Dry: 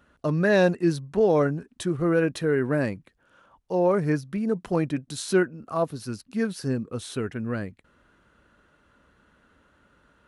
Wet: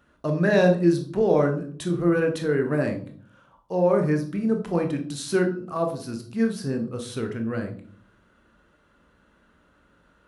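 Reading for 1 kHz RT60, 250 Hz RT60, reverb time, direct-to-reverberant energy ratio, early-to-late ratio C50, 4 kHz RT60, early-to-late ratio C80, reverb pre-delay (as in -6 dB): 0.40 s, 0.80 s, 0.50 s, 4.0 dB, 9.5 dB, 0.35 s, 14.0 dB, 18 ms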